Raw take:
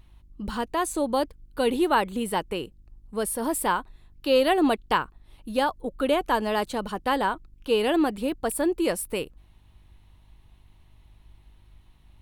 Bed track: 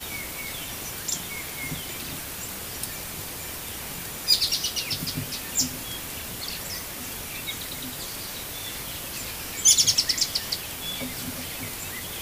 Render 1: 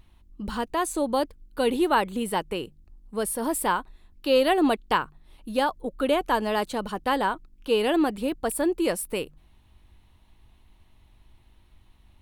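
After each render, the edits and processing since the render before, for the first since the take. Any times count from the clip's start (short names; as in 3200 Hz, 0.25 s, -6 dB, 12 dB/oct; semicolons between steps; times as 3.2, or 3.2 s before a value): de-hum 50 Hz, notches 3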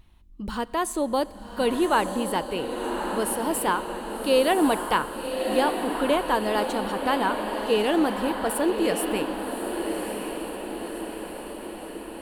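diffused feedback echo 1.138 s, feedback 61%, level -6 dB; Schroeder reverb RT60 3.4 s, combs from 29 ms, DRR 18.5 dB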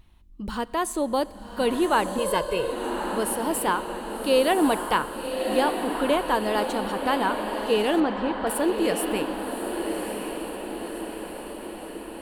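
2.18–2.72 comb 1.9 ms, depth 94%; 8–8.47 air absorption 140 m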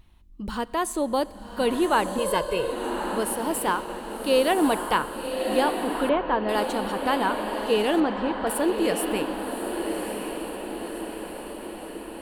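3.22–4.72 G.711 law mismatch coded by A; 6.09–6.49 Gaussian blur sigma 2.8 samples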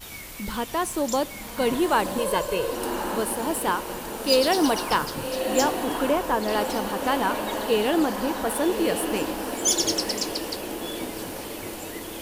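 add bed track -5.5 dB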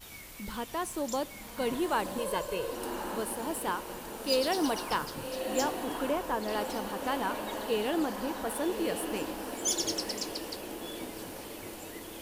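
gain -8 dB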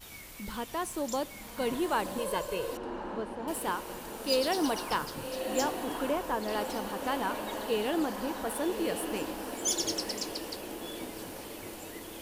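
2.77–3.48 tape spacing loss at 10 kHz 26 dB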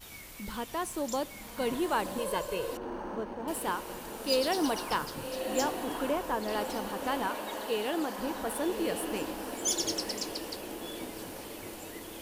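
2.77–3.46 decimation joined by straight lines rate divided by 6×; 7.27–8.19 low shelf 190 Hz -10 dB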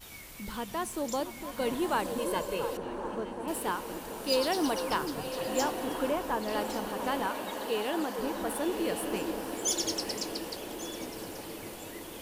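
delay with a stepping band-pass 0.228 s, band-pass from 150 Hz, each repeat 1.4 oct, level -3.5 dB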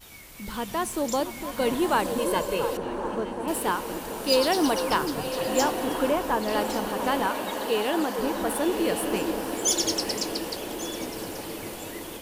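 AGC gain up to 6 dB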